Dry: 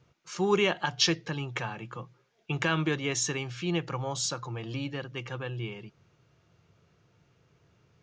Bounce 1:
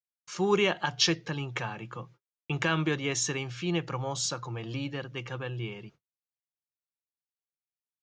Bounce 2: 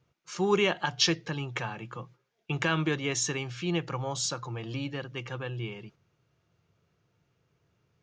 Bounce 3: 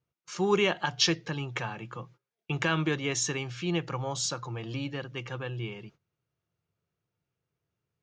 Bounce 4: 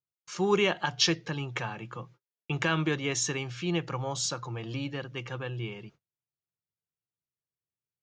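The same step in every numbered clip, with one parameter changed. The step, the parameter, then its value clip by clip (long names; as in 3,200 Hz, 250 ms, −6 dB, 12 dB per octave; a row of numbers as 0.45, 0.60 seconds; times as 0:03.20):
noise gate, range: −53, −7, −20, −38 decibels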